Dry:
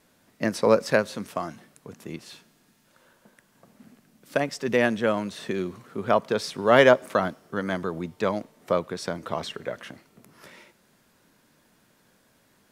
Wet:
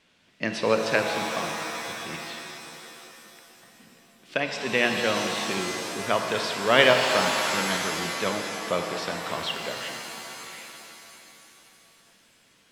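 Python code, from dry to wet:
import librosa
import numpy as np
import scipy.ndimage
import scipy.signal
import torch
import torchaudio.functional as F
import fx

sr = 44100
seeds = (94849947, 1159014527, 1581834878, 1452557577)

y = scipy.signal.sosfilt(scipy.signal.butter(2, 7600.0, 'lowpass', fs=sr, output='sos'), x)
y = fx.peak_eq(y, sr, hz=2900.0, db=12.5, octaves=1.3)
y = fx.rev_shimmer(y, sr, seeds[0], rt60_s=3.0, semitones=7, shimmer_db=-2, drr_db=4.0)
y = y * 10.0 ** (-5.0 / 20.0)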